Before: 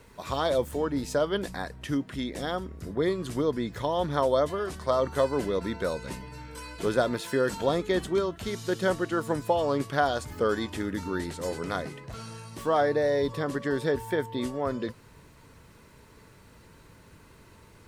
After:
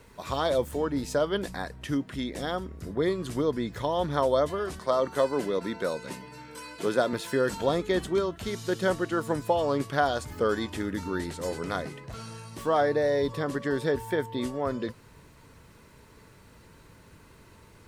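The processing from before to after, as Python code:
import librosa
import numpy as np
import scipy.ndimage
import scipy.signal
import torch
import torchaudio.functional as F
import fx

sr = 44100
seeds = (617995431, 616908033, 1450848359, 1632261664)

y = fx.highpass(x, sr, hz=160.0, slope=12, at=(4.79, 7.13))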